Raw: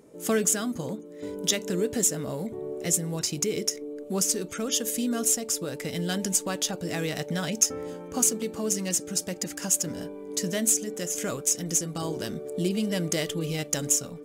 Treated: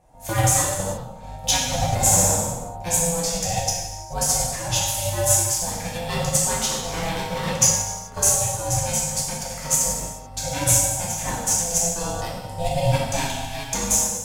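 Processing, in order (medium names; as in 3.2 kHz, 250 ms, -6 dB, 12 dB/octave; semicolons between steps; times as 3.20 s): 12.95–13.71 s: Chebyshev high-pass 190 Hz, order 10; ring modulator 340 Hz; 1.87–2.33 s: flutter echo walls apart 10.3 m, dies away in 1.2 s; gated-style reverb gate 460 ms falling, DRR -6.5 dB; upward expansion 1.5:1, over -34 dBFS; trim +4.5 dB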